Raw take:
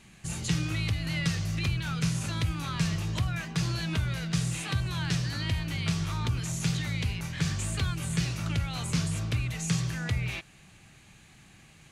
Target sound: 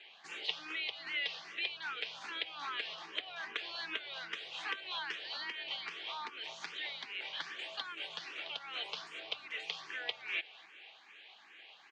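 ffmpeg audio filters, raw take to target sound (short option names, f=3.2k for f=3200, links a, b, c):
-filter_complex "[0:a]acompressor=threshold=-32dB:ratio=6,highpass=f=470:w=0.5412,highpass=f=470:w=1.3066,equalizer=f=570:t=q:w=4:g=-5,equalizer=f=1.3k:t=q:w=4:g=-4,equalizer=f=3.2k:t=q:w=4:g=6,lowpass=f=4k:w=0.5412,lowpass=f=4k:w=1.3066,asplit=2[a][b];[b]aecho=0:1:255|510|765|1020:0.141|0.0593|0.0249|0.0105[c];[a][c]amix=inputs=2:normalize=0,asplit=2[d][e];[e]afreqshift=2.5[f];[d][f]amix=inputs=2:normalize=1,volume=4.5dB"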